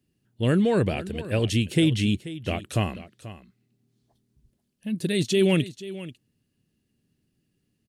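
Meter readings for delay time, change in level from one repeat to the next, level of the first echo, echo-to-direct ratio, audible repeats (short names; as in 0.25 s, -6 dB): 0.486 s, no steady repeat, -15.5 dB, -15.5 dB, 1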